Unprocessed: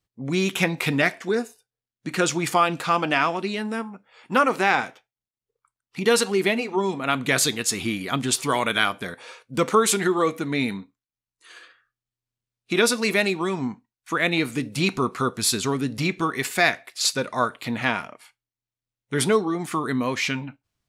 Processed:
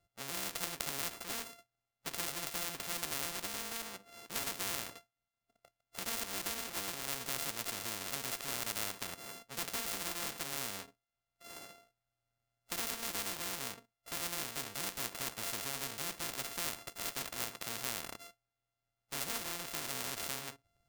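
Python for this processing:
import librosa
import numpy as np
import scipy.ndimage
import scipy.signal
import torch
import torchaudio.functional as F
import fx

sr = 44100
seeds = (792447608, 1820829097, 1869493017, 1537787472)

y = np.r_[np.sort(x[:len(x) // 64 * 64].reshape(-1, 64), axis=1).ravel(), x[len(x) // 64 * 64:]]
y = fx.spectral_comp(y, sr, ratio=4.0)
y = y * librosa.db_to_amplitude(-8.0)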